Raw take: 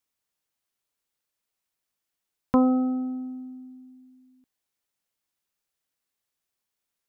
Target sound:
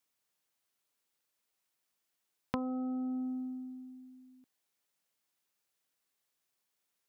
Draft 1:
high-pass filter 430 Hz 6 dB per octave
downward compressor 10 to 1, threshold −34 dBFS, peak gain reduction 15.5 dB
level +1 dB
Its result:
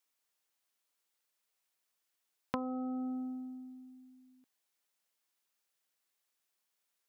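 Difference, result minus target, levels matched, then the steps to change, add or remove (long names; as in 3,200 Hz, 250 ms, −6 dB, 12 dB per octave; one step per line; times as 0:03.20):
125 Hz band −2.5 dB
change: high-pass filter 140 Hz 6 dB per octave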